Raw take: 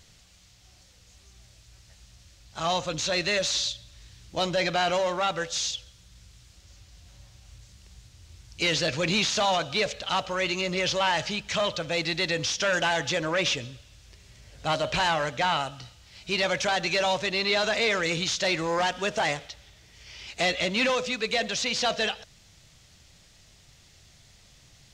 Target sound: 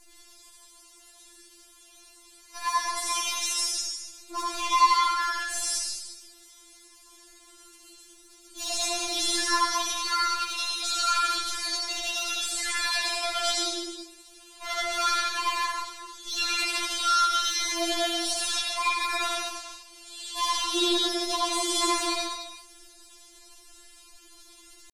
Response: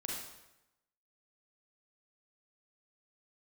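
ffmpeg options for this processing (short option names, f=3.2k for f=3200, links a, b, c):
-filter_complex "[0:a]asplit=2[a][b];[b]acompressor=threshold=-38dB:ratio=16,volume=0dB[c];[a][c]amix=inputs=2:normalize=0,aeval=exprs='0.224*(cos(1*acos(clip(val(0)/0.224,-1,1)))-cos(1*PI/2))+0.0794*(cos(2*acos(clip(val(0)/0.224,-1,1)))-cos(2*PI/2))+0.00178*(cos(4*acos(clip(val(0)/0.224,-1,1)))-cos(4*PI/2))+0.01*(cos(5*acos(clip(val(0)/0.224,-1,1)))-cos(5*PI/2))+0.0178*(cos(8*acos(clip(val(0)/0.224,-1,1)))-cos(8*PI/2))':c=same,asetrate=64194,aresample=44100,atempo=0.686977[d];[1:a]atrim=start_sample=2205,afade=t=out:st=0.36:d=0.01,atrim=end_sample=16317,asetrate=24255,aresample=44100[e];[d][e]afir=irnorm=-1:irlink=0,afftfilt=real='re*4*eq(mod(b,16),0)':imag='im*4*eq(mod(b,16),0)':win_size=2048:overlap=0.75,volume=-4.5dB"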